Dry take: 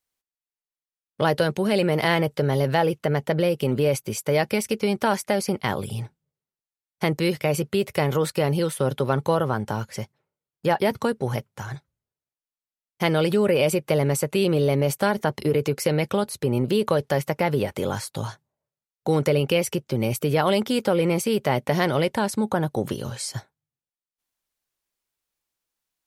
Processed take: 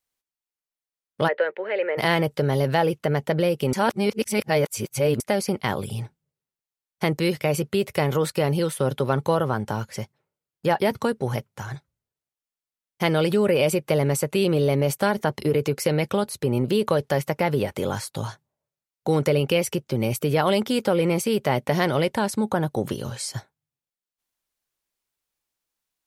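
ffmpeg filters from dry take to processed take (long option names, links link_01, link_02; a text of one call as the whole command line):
ffmpeg -i in.wav -filter_complex "[0:a]asplit=3[link_01][link_02][link_03];[link_01]afade=type=out:start_time=1.27:duration=0.02[link_04];[link_02]highpass=frequency=470:width=0.5412,highpass=frequency=470:width=1.3066,equalizer=frequency=510:width_type=q:width=4:gain=4,equalizer=frequency=730:width_type=q:width=4:gain=-8,equalizer=frequency=1100:width_type=q:width=4:gain=-7,equalizer=frequency=1900:width_type=q:width=4:gain=7,lowpass=frequency=2300:width=0.5412,lowpass=frequency=2300:width=1.3066,afade=type=in:start_time=1.27:duration=0.02,afade=type=out:start_time=1.97:duration=0.02[link_05];[link_03]afade=type=in:start_time=1.97:duration=0.02[link_06];[link_04][link_05][link_06]amix=inputs=3:normalize=0,asplit=3[link_07][link_08][link_09];[link_07]atrim=end=3.732[link_10];[link_08]atrim=start=3.728:end=5.202,asetpts=PTS-STARTPTS,areverse[link_11];[link_09]atrim=start=5.198[link_12];[link_10][link_11]acrossfade=duration=0.004:curve1=hsin:curve2=hsin[link_13];[link_13][link_12]acrossfade=duration=0.004:curve1=hsin:curve2=hsin" out.wav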